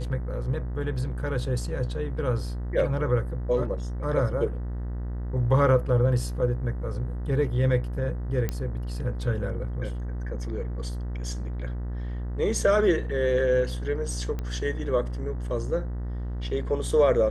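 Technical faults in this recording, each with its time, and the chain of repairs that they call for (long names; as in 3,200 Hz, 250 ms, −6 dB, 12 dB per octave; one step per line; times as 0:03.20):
mains buzz 60 Hz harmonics 33 −31 dBFS
0:08.49: click −14 dBFS
0:14.39: click −20 dBFS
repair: click removal
hum removal 60 Hz, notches 33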